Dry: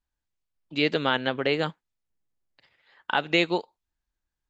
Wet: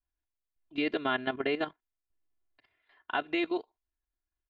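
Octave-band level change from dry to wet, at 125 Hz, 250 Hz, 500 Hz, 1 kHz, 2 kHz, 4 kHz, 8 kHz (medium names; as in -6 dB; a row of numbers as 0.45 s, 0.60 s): -15.0 dB, -4.0 dB, -6.0 dB, -6.0 dB, -7.0 dB, -10.5 dB, no reading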